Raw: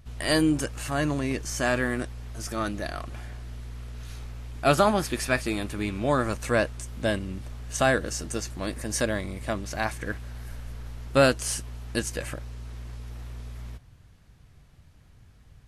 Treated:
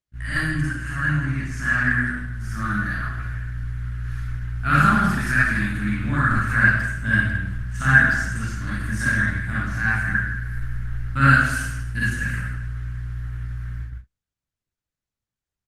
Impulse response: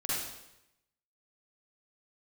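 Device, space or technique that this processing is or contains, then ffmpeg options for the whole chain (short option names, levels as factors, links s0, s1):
speakerphone in a meeting room: -filter_complex "[0:a]firequalizer=gain_entry='entry(180,0);entry(440,-29);entry(1500,6);entry(2500,-8);entry(4100,-13)':delay=0.05:min_phase=1[s0];[1:a]atrim=start_sample=2205[s1];[s0][s1]afir=irnorm=-1:irlink=0,asplit=2[s2][s3];[s3]adelay=160,highpass=300,lowpass=3400,asoftclip=type=hard:threshold=0.2,volume=0.282[s4];[s2][s4]amix=inputs=2:normalize=0,dynaudnorm=f=810:g=7:m=2.11,agate=range=0.00562:threshold=0.0224:ratio=16:detection=peak" -ar 48000 -c:a libopus -b:a 20k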